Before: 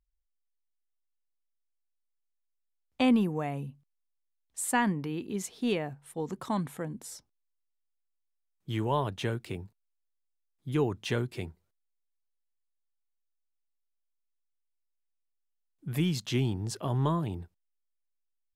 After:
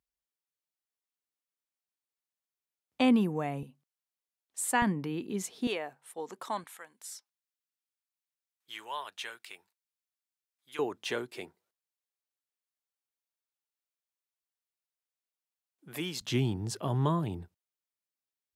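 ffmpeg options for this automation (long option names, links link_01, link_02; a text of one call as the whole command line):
ffmpeg -i in.wav -af "asetnsamples=nb_out_samples=441:pad=0,asendcmd='3.63 highpass f 300;4.82 highpass f 130;5.67 highpass f 510;6.64 highpass f 1300;10.79 highpass f 380;16.21 highpass f 90',highpass=130" out.wav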